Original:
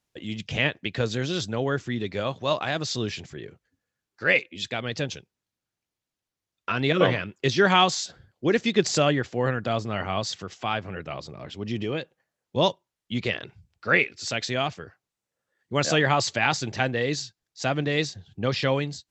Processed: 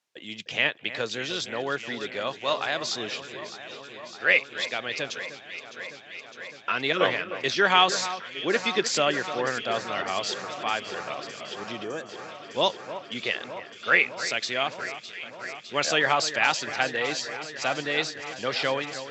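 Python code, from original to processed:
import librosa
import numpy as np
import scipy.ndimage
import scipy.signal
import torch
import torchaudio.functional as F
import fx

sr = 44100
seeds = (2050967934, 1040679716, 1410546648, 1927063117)

y = fx.weighting(x, sr, curve='A')
y = fx.echo_alternate(y, sr, ms=304, hz=2200.0, feedback_pct=88, wet_db=-12.0)
y = fx.spec_box(y, sr, start_s=11.84, length_s=0.25, low_hz=1800.0, high_hz=5500.0, gain_db=-11)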